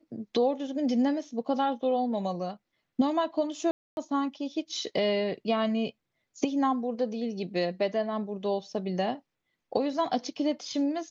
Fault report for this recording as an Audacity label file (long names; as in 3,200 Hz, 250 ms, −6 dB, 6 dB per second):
3.710000	3.970000	drop-out 261 ms